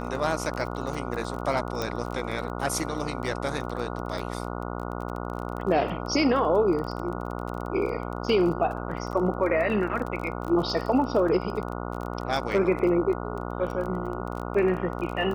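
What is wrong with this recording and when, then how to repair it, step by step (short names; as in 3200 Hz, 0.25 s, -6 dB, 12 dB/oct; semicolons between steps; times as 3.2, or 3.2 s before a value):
buzz 60 Hz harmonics 24 -33 dBFS
crackle 22/s -32 dBFS
1.82 pop -15 dBFS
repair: de-click; de-hum 60 Hz, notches 24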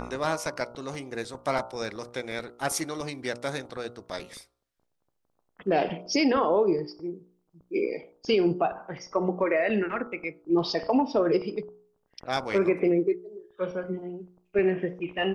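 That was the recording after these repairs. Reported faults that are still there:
none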